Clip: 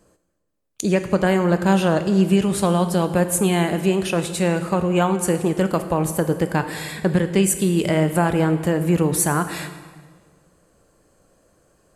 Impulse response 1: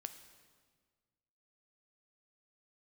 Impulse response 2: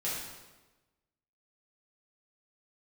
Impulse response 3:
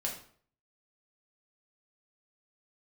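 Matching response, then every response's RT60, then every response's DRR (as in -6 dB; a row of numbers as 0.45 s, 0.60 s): 1; 1.6 s, 1.2 s, 0.50 s; 8.5 dB, -9.0 dB, -2.0 dB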